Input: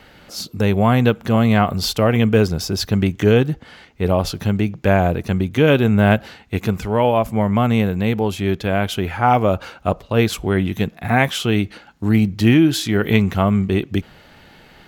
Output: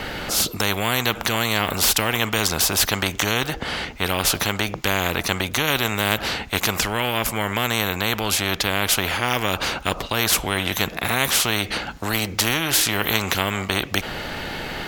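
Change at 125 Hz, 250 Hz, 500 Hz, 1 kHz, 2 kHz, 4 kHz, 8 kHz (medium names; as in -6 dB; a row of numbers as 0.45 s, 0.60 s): -10.5 dB, -11.0 dB, -8.5 dB, -3.0 dB, +3.0 dB, +6.5 dB, +11.5 dB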